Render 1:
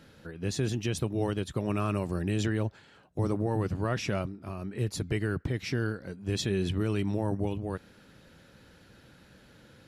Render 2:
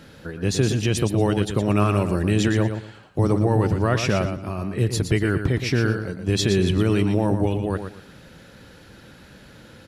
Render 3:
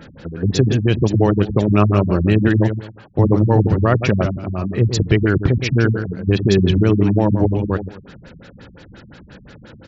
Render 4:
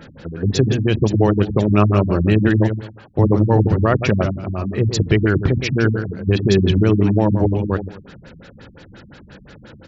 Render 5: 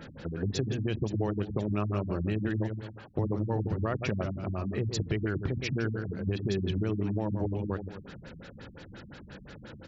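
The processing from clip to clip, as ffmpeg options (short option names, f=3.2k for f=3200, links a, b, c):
-af "aecho=1:1:117|234|351:0.398|0.0955|0.0229,volume=9dB"
-af "afftfilt=real='re*lt(b*sr/1024,210*pow(7800/210,0.5+0.5*sin(2*PI*5.7*pts/sr)))':imag='im*lt(b*sr/1024,210*pow(7800/210,0.5+0.5*sin(2*PI*5.7*pts/sr)))':win_size=1024:overlap=0.75,volume=6dB"
-af "bandreject=f=60:t=h:w=6,bandreject=f=120:t=h:w=6,bandreject=f=180:t=h:w=6,bandreject=f=240:t=h:w=6,bandreject=f=300:t=h:w=6"
-af "acompressor=threshold=-25dB:ratio=3,volume=-5dB"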